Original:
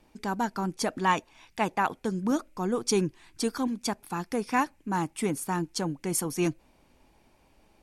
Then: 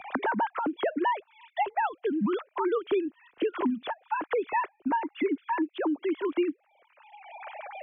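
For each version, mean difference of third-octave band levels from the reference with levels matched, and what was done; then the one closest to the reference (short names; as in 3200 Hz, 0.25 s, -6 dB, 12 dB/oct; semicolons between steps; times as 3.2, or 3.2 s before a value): 14.0 dB: sine-wave speech; three-band squash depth 100%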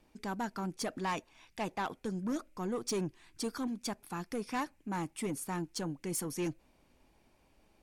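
2.5 dB: bell 870 Hz -2.5 dB 0.31 oct; soft clip -23.5 dBFS, distortion -13 dB; gain -5 dB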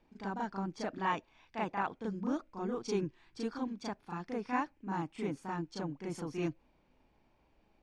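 5.0 dB: air absorption 150 m; on a send: reverse echo 36 ms -5 dB; on the sum: gain -8.5 dB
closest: second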